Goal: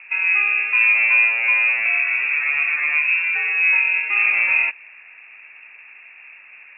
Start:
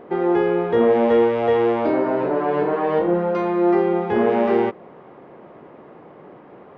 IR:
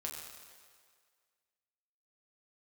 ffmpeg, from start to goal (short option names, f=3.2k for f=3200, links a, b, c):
-filter_complex "[0:a]lowpass=f=2.5k:t=q:w=0.5098,lowpass=f=2.5k:t=q:w=0.6013,lowpass=f=2.5k:t=q:w=0.9,lowpass=f=2.5k:t=q:w=2.563,afreqshift=-2900,asettb=1/sr,asplit=3[a][b][c];[a]atrim=end=1.104[d];[b]atrim=start=1.1:end=1.76,asetpts=PTS-STARTPTS,afade=t=in:d=0.004:c=qsin,afade=t=out:st=0.656:d=0.004:c=qsin,lowshelf=f=300:t=q:w=1.5:g=-8.5[e];[c]atrim=start=1.756[f];[d][e]acrossfade=d=0.004:c1=hsin:c2=qsin[g];[g][f]acrossfade=d=0.004:c1=qsin:c2=hsin"